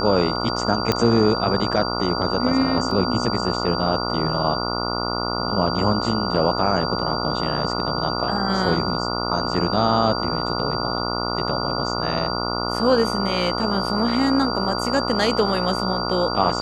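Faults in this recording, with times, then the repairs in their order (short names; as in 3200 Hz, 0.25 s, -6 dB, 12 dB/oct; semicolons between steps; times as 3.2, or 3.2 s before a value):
buzz 60 Hz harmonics 24 -26 dBFS
tone 4700 Hz -28 dBFS
0.92 pop -5 dBFS
2.91 gap 2.5 ms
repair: de-click; notch 4700 Hz, Q 30; de-hum 60 Hz, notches 24; interpolate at 2.91, 2.5 ms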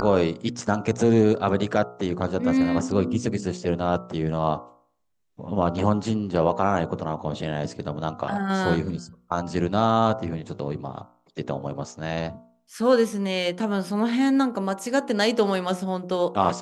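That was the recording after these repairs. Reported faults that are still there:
none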